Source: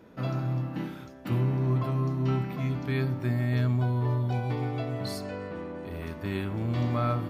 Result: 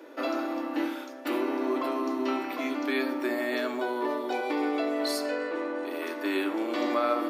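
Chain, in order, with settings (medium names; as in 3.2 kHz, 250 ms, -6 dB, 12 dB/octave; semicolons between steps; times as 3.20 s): Chebyshev high-pass 290 Hz, order 5; in parallel at +3 dB: peak limiter -28 dBFS, peak gain reduction 8 dB; on the sum: reverberation RT60 0.95 s, pre-delay 3 ms, DRR 7.5 dB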